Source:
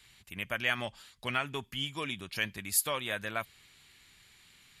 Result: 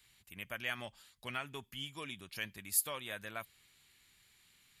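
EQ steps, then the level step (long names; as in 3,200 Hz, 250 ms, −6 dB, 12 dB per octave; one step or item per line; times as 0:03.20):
high-shelf EQ 11,000 Hz +11.5 dB
−8.5 dB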